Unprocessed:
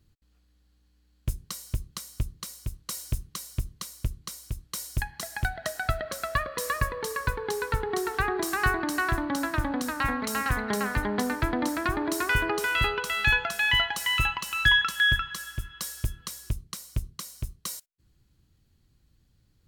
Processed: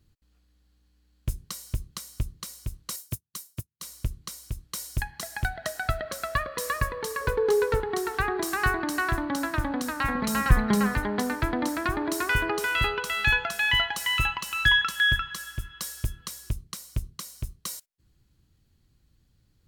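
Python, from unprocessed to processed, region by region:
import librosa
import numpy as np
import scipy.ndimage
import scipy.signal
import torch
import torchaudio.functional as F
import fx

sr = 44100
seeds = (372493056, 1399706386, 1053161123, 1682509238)

y = fx.chain(x, sr, fx.highpass(hz=89.0, slope=24),
    fx.high_shelf(hz=8500.0, db=11.0),
    fx.upward_expand(threshold_db=-52.0, expansion=2.5), at=(2.96, 3.83))
y = fx.chain(y, sr, fx.peak_eq(hz=450.0, db=12.0, octaves=0.61),
    fx.clip_hard(threshold_db=-17.0), at=(7.21, 7.8))
y = fx.chain(y, sr, fx.low_shelf(hz=250.0, db=12.0),
    fx.comb(ms=5.7, depth=0.48), at=(10.15, 10.95))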